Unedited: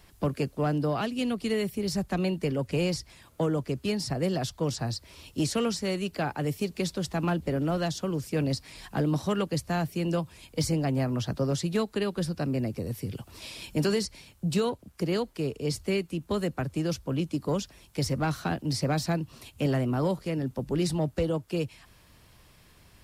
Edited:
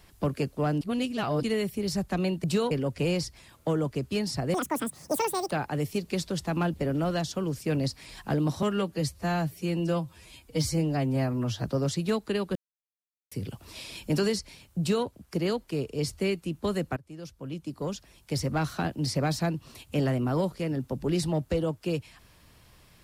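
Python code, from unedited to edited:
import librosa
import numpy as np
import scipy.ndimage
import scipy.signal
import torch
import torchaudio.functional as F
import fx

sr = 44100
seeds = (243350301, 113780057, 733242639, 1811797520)

y = fx.edit(x, sr, fx.reverse_span(start_s=0.81, length_s=0.62),
    fx.speed_span(start_s=4.27, length_s=1.91, speed=1.96),
    fx.stretch_span(start_s=9.29, length_s=2.0, factor=1.5),
    fx.silence(start_s=12.22, length_s=0.76),
    fx.duplicate(start_s=14.46, length_s=0.27, to_s=2.44),
    fx.fade_in_from(start_s=16.63, length_s=1.6, floor_db=-20.5), tone=tone)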